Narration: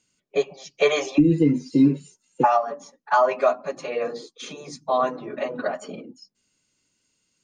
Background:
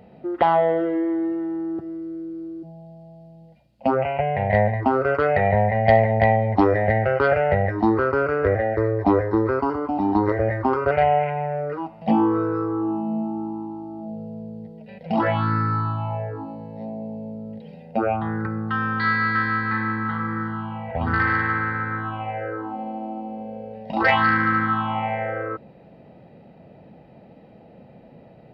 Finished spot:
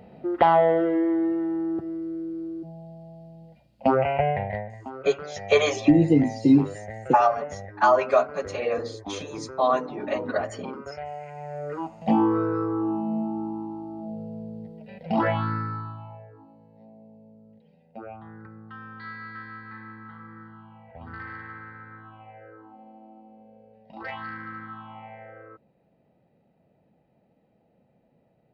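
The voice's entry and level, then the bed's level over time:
4.70 s, 0.0 dB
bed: 4.3 s 0 dB
4.66 s -18 dB
11.18 s -18 dB
11.81 s -2 dB
15.26 s -2 dB
16.28 s -18 dB

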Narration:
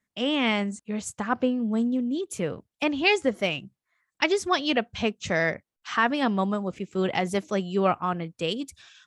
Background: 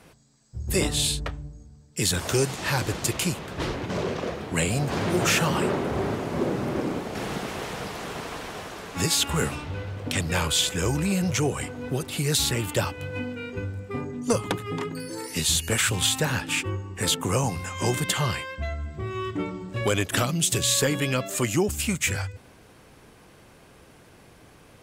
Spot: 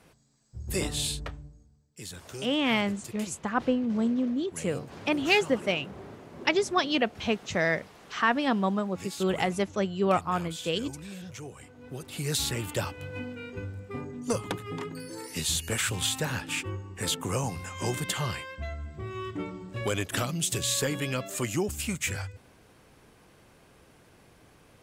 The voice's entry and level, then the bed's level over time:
2.25 s, -1.5 dB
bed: 1.33 s -6 dB
1.98 s -17.5 dB
11.64 s -17.5 dB
12.28 s -5.5 dB

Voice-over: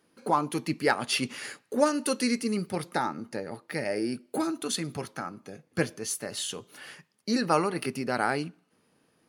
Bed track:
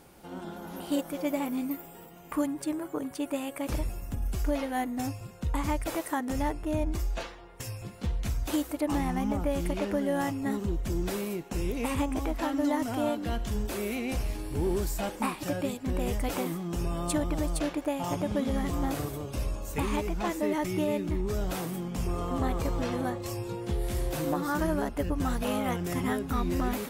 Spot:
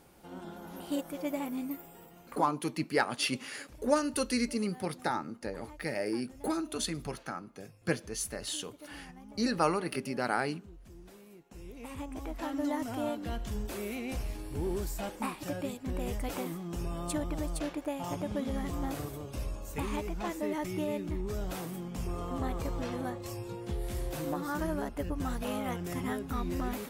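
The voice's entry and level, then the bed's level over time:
2.10 s, -3.5 dB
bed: 2.21 s -4.5 dB
2.61 s -21.5 dB
11.24 s -21.5 dB
12.56 s -5 dB

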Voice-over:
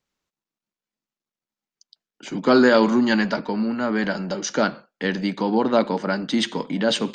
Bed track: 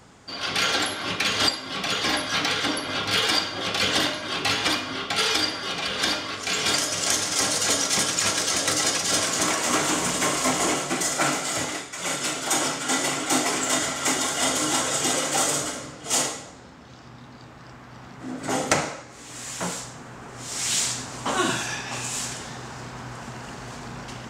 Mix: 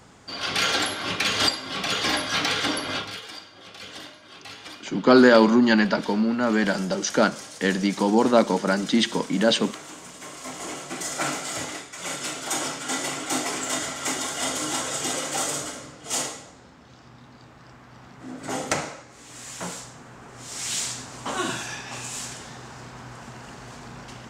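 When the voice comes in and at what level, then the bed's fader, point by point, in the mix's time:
2.60 s, +1.0 dB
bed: 2.95 s 0 dB
3.21 s -17.5 dB
10.18 s -17.5 dB
11.2 s -4 dB

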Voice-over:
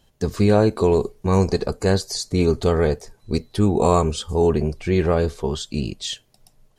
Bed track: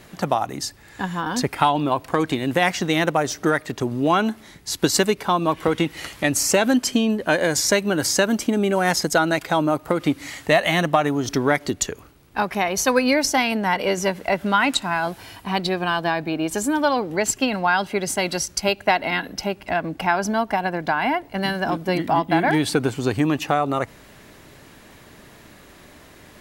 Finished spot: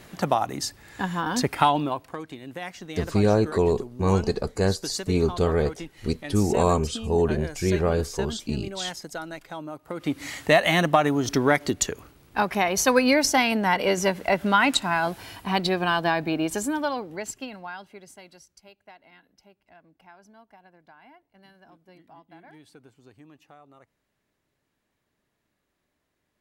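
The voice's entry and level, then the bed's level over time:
2.75 s, -4.0 dB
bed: 1.74 s -1.5 dB
2.23 s -16.5 dB
9.82 s -16.5 dB
10.23 s -1 dB
16.37 s -1 dB
18.69 s -31 dB

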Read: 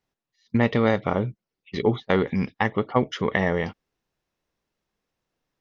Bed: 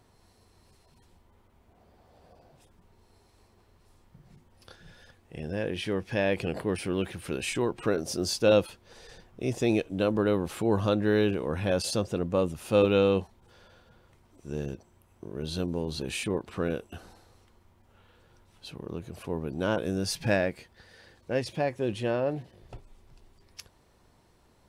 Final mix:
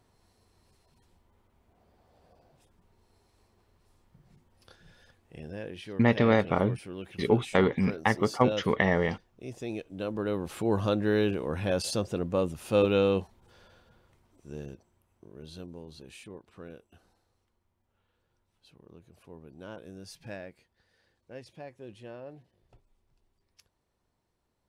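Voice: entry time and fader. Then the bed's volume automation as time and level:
5.45 s, -2.0 dB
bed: 5.33 s -5 dB
5.92 s -11 dB
9.74 s -11 dB
10.67 s -1.5 dB
13.64 s -1.5 dB
16.25 s -16 dB

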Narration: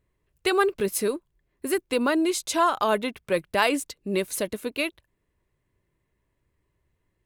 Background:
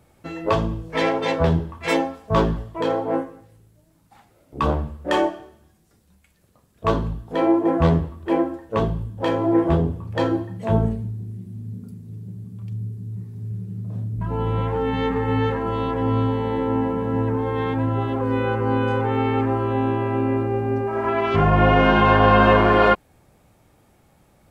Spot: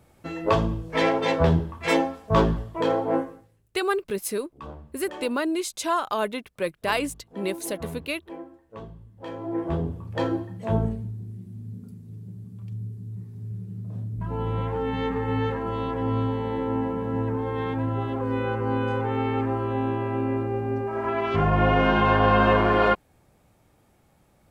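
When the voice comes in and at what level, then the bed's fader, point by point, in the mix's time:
3.30 s, -3.0 dB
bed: 3.32 s -1 dB
3.7 s -19 dB
8.99 s -19 dB
9.99 s -4.5 dB

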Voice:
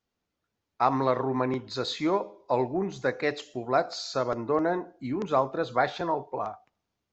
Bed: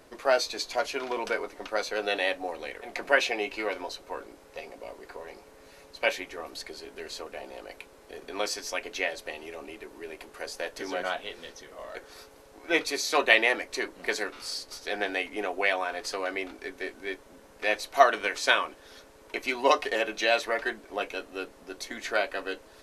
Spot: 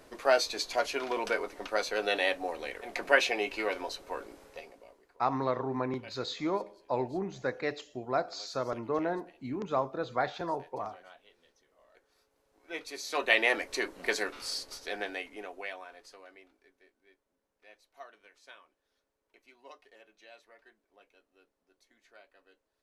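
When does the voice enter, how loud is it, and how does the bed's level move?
4.40 s, -5.5 dB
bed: 4.45 s -1 dB
5.18 s -23 dB
12.25 s -23 dB
13.55 s -1 dB
14.61 s -1 dB
16.93 s -30 dB

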